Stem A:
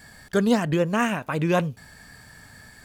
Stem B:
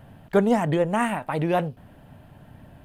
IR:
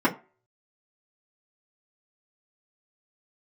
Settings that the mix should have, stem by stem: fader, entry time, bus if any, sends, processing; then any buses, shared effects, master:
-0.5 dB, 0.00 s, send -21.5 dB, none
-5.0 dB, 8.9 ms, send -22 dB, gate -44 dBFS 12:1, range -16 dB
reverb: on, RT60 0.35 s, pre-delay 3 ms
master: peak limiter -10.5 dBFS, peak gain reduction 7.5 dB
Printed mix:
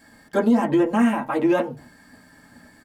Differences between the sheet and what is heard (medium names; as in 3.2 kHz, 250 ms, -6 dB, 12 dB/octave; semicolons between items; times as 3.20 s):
stem A -0.5 dB -> -8.0 dB; reverb return +8.0 dB